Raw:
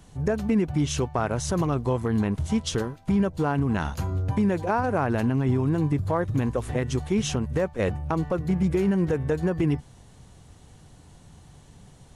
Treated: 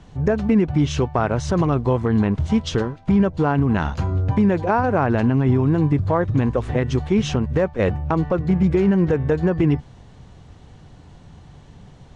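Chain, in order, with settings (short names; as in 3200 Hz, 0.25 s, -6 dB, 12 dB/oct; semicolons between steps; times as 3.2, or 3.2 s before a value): air absorption 130 m; gain +6 dB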